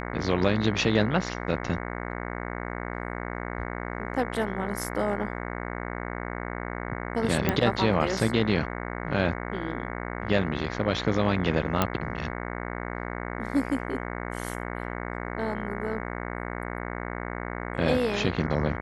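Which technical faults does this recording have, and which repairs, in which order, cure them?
buzz 60 Hz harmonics 37 -34 dBFS
7.49 pop -9 dBFS
11.82 pop -8 dBFS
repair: de-click; de-hum 60 Hz, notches 37

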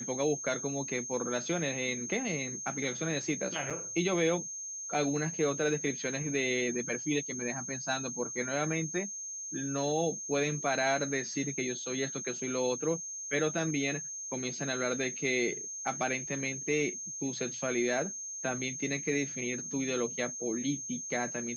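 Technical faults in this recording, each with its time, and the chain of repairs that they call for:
tone 6400 Hz -38 dBFS
3.7–3.71 gap 6 ms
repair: notch 6400 Hz, Q 30; interpolate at 3.7, 6 ms

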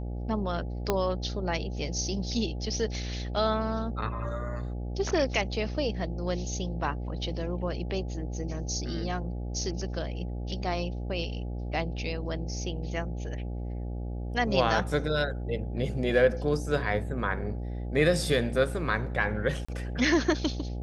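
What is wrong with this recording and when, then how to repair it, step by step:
buzz 60 Hz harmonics 14 -34 dBFS
0.9 pop -11 dBFS
19.65–19.68 gap 35 ms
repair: de-click; de-hum 60 Hz, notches 14; interpolate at 19.65, 35 ms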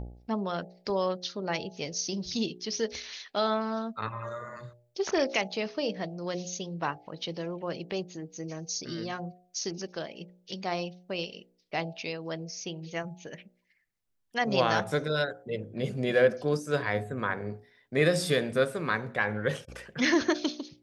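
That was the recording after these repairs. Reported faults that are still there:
0.9 pop

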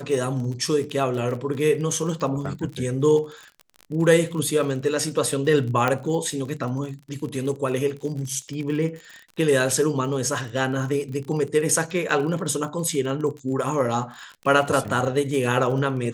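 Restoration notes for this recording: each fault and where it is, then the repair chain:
crackle 41/s -31 dBFS
5.88 pop -9 dBFS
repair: de-click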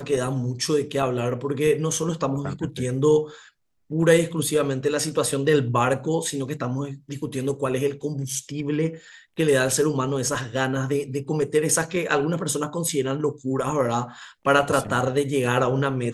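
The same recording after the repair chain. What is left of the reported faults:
none

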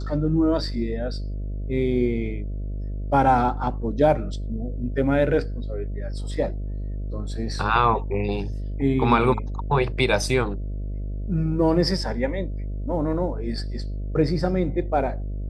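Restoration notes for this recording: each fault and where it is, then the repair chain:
buzz 50 Hz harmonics 13 -29 dBFS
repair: de-hum 50 Hz, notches 13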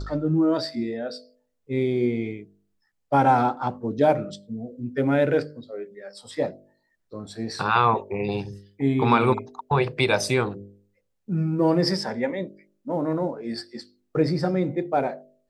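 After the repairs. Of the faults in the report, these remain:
none

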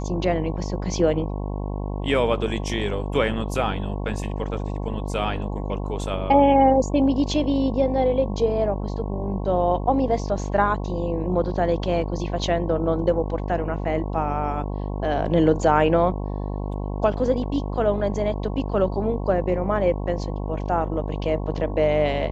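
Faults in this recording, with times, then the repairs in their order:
buzz 50 Hz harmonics 22 -28 dBFS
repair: de-hum 50 Hz, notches 22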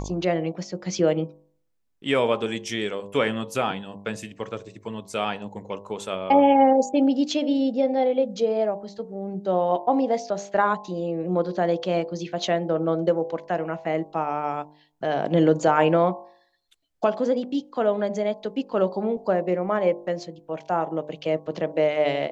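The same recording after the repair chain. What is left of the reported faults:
none

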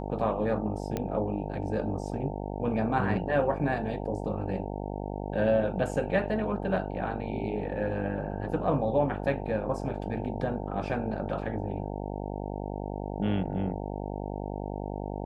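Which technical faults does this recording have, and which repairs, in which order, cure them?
buzz 50 Hz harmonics 18 -35 dBFS
0.97 pop -17 dBFS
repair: de-click; de-hum 50 Hz, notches 18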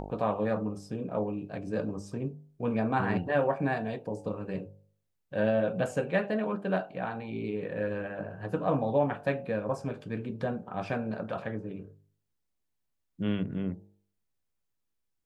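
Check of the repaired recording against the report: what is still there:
none

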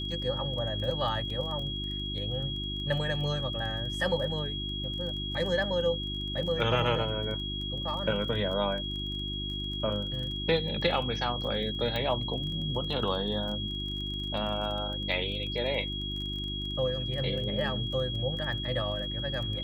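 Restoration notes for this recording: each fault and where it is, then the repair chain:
crackle 23/s -37 dBFS
hum 50 Hz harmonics 7 -37 dBFS
tone 3300 Hz -35 dBFS
1.3 gap 3.1 ms
11.96 pop -19 dBFS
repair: de-click; de-hum 50 Hz, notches 7; notch 3300 Hz, Q 30; interpolate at 1.3, 3.1 ms

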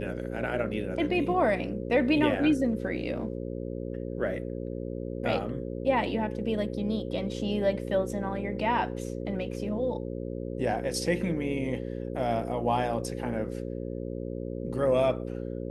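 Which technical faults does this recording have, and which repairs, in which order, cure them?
buzz 60 Hz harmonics 9 -35 dBFS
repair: de-hum 60 Hz, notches 9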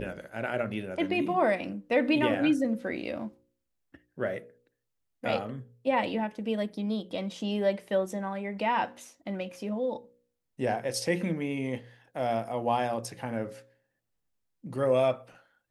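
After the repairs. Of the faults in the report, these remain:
none

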